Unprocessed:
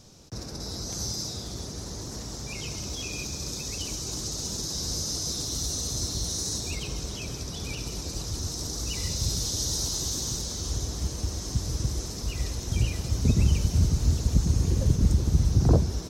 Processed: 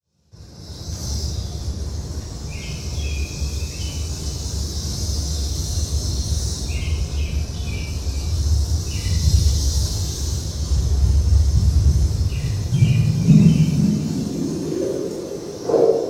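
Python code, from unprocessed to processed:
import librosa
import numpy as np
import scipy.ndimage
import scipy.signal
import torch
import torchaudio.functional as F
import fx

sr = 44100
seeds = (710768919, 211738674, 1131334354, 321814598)

p1 = fx.fade_in_head(x, sr, length_s=1.12)
p2 = fx.filter_sweep_highpass(p1, sr, from_hz=72.0, to_hz=450.0, start_s=11.7, end_s=15.07, q=4.1)
p3 = np.sign(p2) * np.maximum(np.abs(p2) - 10.0 ** (-35.0 / 20.0), 0.0)
p4 = p2 + (p3 * librosa.db_to_amplitude(-6.0))
p5 = fx.dereverb_blind(p4, sr, rt60_s=1.6)
p6 = p5 + fx.echo_single(p5, sr, ms=422, db=-11.5, dry=0)
p7 = fx.room_shoebox(p6, sr, seeds[0], volume_m3=870.0, walls='mixed', distance_m=5.1)
y = p7 * librosa.db_to_amplitude(-7.0)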